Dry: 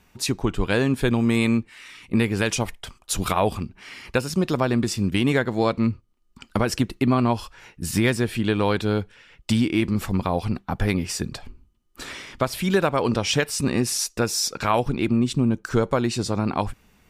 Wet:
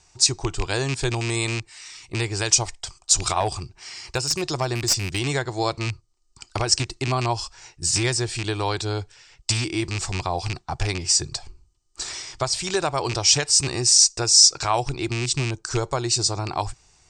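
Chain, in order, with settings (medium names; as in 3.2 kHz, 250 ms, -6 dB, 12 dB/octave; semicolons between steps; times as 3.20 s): rattle on loud lows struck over -22 dBFS, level -16 dBFS; FFT filter 140 Hz 0 dB, 220 Hz -19 dB, 350 Hz 0 dB, 510 Hz -7 dB, 730 Hz +3 dB, 1.5 kHz -3 dB, 3.3 kHz 0 dB, 4.9 kHz +13 dB, 8.4 kHz +13 dB, 12 kHz -27 dB; 3.40–5.19 s: one-sided clip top -16.5 dBFS; trim -1 dB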